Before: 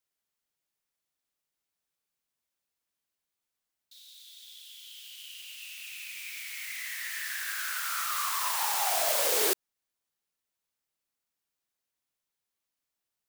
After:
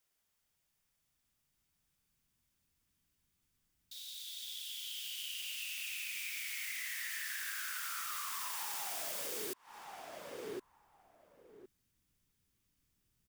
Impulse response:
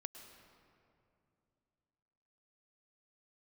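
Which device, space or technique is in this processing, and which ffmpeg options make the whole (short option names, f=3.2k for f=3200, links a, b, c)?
serial compression, leveller first: -filter_complex "[0:a]asubboost=boost=11.5:cutoff=190,bandreject=f=4.1k:w=18,asplit=2[a][b];[b]adelay=1063,lowpass=f=1k:p=1,volume=-17dB,asplit=2[c][d];[d]adelay=1063,lowpass=f=1k:p=1,volume=0.18[e];[a][c][e]amix=inputs=3:normalize=0,acompressor=threshold=-33dB:ratio=3,acompressor=threshold=-44dB:ratio=6,volume=5.5dB"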